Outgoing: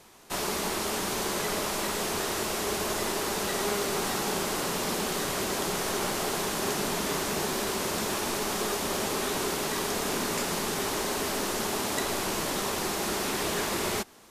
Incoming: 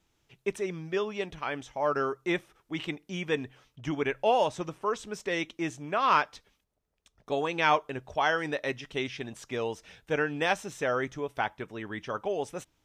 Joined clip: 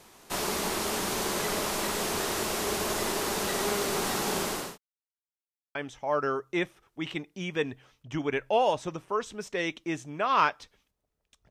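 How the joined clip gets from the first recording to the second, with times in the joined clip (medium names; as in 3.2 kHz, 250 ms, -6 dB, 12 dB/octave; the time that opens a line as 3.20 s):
outgoing
4.35–4.78 s: fade out equal-power
4.78–5.75 s: mute
5.75 s: go over to incoming from 1.48 s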